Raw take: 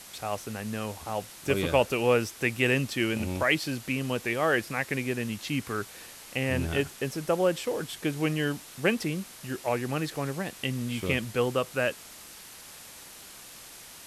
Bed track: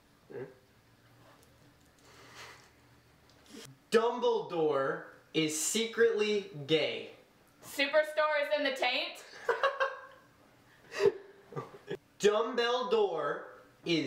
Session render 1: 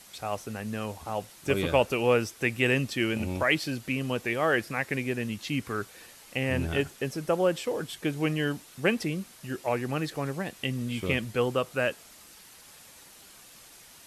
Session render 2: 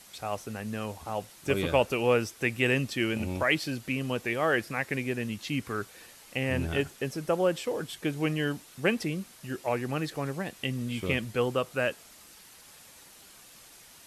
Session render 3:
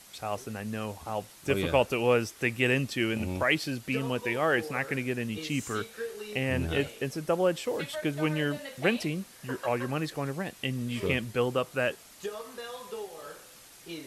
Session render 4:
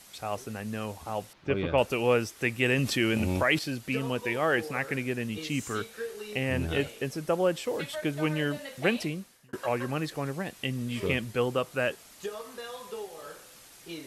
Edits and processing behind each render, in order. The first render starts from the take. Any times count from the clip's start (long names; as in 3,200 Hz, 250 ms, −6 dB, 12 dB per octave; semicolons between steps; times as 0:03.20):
broadband denoise 6 dB, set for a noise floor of −47 dBFS
level −1 dB
mix in bed track −10.5 dB
0:01.33–0:01.78: high-frequency loss of the air 260 metres; 0:02.78–0:03.59: envelope flattener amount 50%; 0:09.03–0:09.53: fade out